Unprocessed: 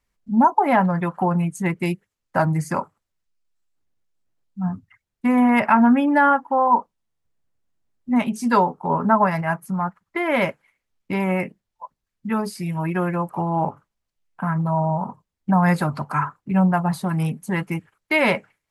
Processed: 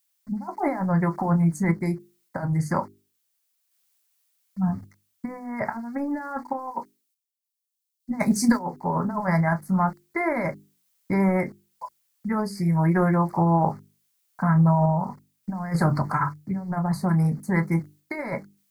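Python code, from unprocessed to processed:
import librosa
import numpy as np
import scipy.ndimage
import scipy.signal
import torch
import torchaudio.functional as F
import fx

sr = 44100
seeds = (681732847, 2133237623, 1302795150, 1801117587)

y = fx.over_compress(x, sr, threshold_db=-21.0, ratio=-0.5)
y = fx.low_shelf(y, sr, hz=94.0, db=11.5)
y = fx.room_early_taps(y, sr, ms=(20, 30), db=(-16.5, -13.0))
y = np.where(np.abs(y) >= 10.0 ** (-44.0 / 20.0), y, 0.0)
y = scipy.signal.sosfilt(scipy.signal.cheby1(3, 1.0, [2100.0, 4400.0], 'bandstop', fs=sr, output='sos'), y)
y = fx.high_shelf(y, sr, hz=8200.0, db=-6.0)
y = fx.dmg_noise_colour(y, sr, seeds[0], colour='blue', level_db=-68.0)
y = fx.tremolo_random(y, sr, seeds[1], hz=3.5, depth_pct=55)
y = fx.hum_notches(y, sr, base_hz=50, count=8)
y = fx.band_widen(y, sr, depth_pct=100, at=(6.53, 8.59))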